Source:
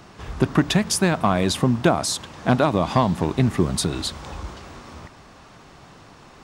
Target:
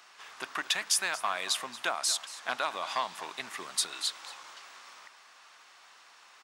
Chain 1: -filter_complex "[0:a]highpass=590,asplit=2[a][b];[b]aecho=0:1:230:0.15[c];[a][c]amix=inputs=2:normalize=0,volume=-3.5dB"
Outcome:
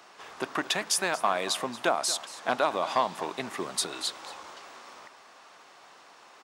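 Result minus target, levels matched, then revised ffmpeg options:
500 Hz band +8.5 dB
-filter_complex "[0:a]highpass=1.3k,asplit=2[a][b];[b]aecho=0:1:230:0.15[c];[a][c]amix=inputs=2:normalize=0,volume=-3.5dB"

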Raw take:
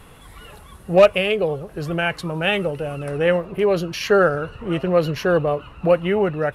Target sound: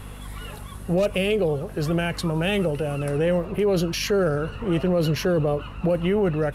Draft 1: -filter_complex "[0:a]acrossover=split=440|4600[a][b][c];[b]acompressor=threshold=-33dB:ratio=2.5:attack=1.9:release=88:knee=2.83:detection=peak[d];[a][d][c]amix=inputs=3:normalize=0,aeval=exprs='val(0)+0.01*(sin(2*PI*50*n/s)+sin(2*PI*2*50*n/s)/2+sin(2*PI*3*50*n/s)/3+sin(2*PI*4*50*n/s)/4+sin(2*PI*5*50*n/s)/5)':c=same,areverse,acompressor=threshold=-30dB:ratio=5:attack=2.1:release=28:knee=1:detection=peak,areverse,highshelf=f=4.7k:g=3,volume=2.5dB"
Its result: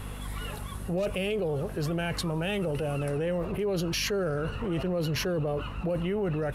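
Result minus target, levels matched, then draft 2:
compressor: peak gain reduction +8 dB
-filter_complex "[0:a]acrossover=split=440|4600[a][b][c];[b]acompressor=threshold=-33dB:ratio=2.5:attack=1.9:release=88:knee=2.83:detection=peak[d];[a][d][c]amix=inputs=3:normalize=0,aeval=exprs='val(0)+0.01*(sin(2*PI*50*n/s)+sin(2*PI*2*50*n/s)/2+sin(2*PI*3*50*n/s)/3+sin(2*PI*4*50*n/s)/4+sin(2*PI*5*50*n/s)/5)':c=same,areverse,acompressor=threshold=-20dB:ratio=5:attack=2.1:release=28:knee=1:detection=peak,areverse,highshelf=f=4.7k:g=3,volume=2.5dB"

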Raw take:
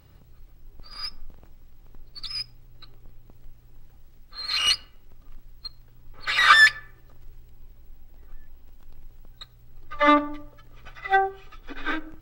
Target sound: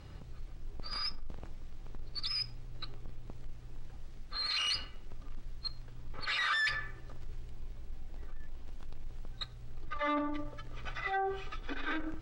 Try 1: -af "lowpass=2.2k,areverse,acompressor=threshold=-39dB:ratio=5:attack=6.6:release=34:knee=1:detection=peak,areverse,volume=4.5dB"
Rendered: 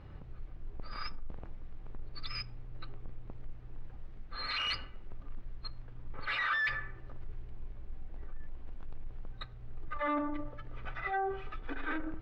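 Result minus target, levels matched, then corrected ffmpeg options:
8000 Hz band -12.0 dB
-af "lowpass=7.8k,areverse,acompressor=threshold=-39dB:ratio=5:attack=6.6:release=34:knee=1:detection=peak,areverse,volume=4.5dB"

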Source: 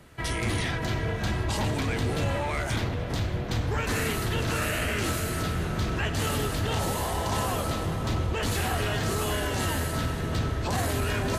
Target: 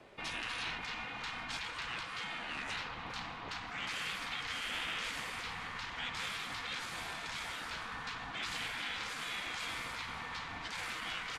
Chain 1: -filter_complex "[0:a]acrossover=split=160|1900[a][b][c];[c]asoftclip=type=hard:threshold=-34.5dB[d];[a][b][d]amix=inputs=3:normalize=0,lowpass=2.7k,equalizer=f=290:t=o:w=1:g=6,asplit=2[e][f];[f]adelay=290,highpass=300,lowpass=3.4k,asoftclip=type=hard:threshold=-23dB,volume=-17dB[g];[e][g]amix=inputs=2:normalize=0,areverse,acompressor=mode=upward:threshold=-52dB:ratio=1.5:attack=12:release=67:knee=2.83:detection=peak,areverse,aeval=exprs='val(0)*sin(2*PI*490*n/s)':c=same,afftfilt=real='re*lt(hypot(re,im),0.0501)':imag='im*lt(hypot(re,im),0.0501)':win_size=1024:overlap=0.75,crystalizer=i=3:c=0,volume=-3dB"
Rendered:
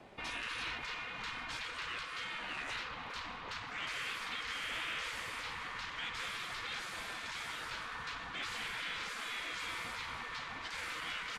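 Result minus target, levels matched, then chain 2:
hard clip: distortion +32 dB; 250 Hz band -2.5 dB
-filter_complex "[0:a]acrossover=split=160|1900[a][b][c];[c]asoftclip=type=hard:threshold=-24.5dB[d];[a][b][d]amix=inputs=3:normalize=0,lowpass=2.7k,asplit=2[e][f];[f]adelay=290,highpass=300,lowpass=3.4k,asoftclip=type=hard:threshold=-23dB,volume=-17dB[g];[e][g]amix=inputs=2:normalize=0,areverse,acompressor=mode=upward:threshold=-52dB:ratio=1.5:attack=12:release=67:knee=2.83:detection=peak,areverse,aeval=exprs='val(0)*sin(2*PI*490*n/s)':c=same,afftfilt=real='re*lt(hypot(re,im),0.0501)':imag='im*lt(hypot(re,im),0.0501)':win_size=1024:overlap=0.75,crystalizer=i=3:c=0,volume=-3dB"

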